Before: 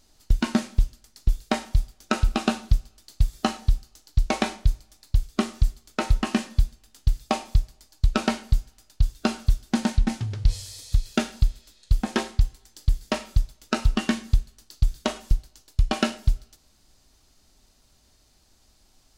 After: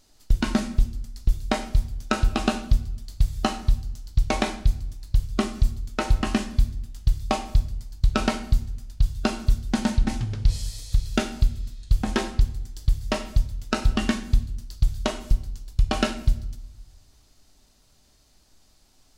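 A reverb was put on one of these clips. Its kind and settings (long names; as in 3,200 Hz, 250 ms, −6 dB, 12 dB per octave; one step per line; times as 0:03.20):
rectangular room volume 200 cubic metres, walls mixed, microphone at 0.33 metres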